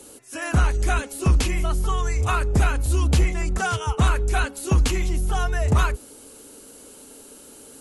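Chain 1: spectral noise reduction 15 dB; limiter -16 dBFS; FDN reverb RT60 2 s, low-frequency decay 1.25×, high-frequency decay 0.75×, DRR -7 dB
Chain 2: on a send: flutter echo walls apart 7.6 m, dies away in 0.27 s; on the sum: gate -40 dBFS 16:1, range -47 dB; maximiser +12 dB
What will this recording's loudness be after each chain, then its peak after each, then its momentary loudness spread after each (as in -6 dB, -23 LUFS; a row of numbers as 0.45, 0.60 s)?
-16.5, -11.5 LUFS; -2.0, -1.0 dBFS; 10, 4 LU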